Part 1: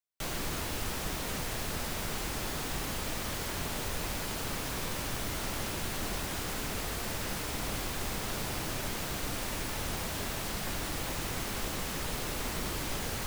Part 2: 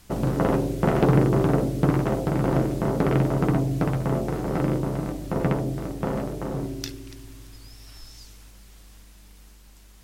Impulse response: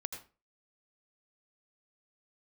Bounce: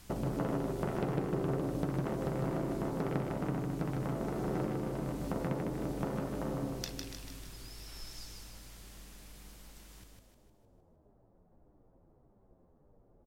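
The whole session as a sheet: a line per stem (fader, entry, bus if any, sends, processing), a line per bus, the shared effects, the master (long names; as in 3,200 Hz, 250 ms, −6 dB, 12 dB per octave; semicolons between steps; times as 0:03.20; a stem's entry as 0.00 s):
−19.0 dB, 0.85 s, no send, no echo send, transistor ladder low-pass 860 Hz, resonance 20%; barber-pole flanger 9 ms −1.7 Hz
−2.5 dB, 0.00 s, no send, echo send −4 dB, downward compressor 4 to 1, threshold −32 dBFS, peak gain reduction 16 dB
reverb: not used
echo: repeating echo 154 ms, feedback 49%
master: no processing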